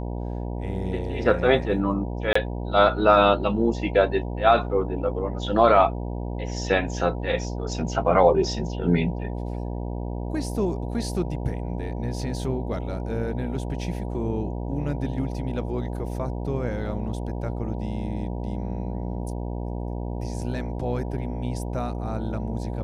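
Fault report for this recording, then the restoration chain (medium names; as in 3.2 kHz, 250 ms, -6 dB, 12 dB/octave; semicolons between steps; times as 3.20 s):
buzz 60 Hz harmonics 16 -30 dBFS
2.33–2.35 s: dropout 24 ms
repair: de-hum 60 Hz, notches 16; interpolate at 2.33 s, 24 ms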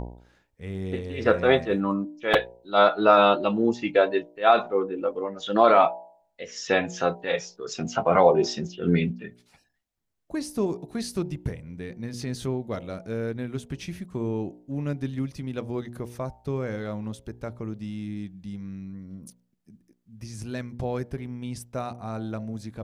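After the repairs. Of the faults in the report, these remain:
nothing left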